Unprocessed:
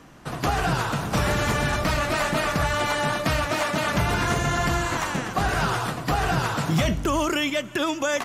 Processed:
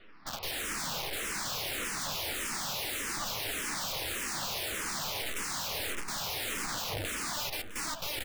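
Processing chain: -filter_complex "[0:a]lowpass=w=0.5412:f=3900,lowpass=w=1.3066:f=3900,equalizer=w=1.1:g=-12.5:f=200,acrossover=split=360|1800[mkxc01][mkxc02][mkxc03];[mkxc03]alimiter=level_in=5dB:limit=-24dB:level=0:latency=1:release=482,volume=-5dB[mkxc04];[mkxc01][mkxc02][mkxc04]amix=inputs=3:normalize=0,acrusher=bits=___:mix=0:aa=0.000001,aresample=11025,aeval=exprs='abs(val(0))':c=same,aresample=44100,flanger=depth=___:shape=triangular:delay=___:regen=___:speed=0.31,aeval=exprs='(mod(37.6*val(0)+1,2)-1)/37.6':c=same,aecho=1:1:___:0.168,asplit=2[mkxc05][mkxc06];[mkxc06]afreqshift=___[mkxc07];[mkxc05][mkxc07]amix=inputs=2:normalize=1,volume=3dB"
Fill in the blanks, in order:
11, 4.9, 9.4, -4, 657, -1.7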